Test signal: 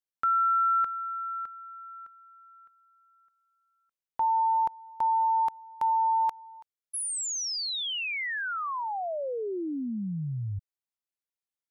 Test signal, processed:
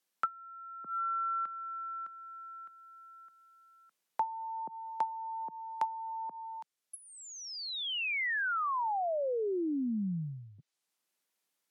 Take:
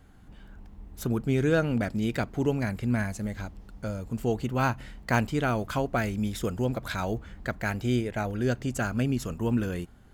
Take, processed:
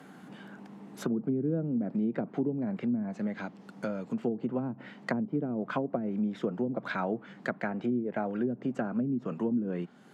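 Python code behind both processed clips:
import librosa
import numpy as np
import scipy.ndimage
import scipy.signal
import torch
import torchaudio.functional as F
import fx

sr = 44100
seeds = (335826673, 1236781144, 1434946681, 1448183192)

y = fx.env_lowpass_down(x, sr, base_hz=300.0, full_db=-22.0)
y = scipy.signal.sosfilt(scipy.signal.butter(6, 160.0, 'highpass', fs=sr, output='sos'), y)
y = fx.band_squash(y, sr, depth_pct=40)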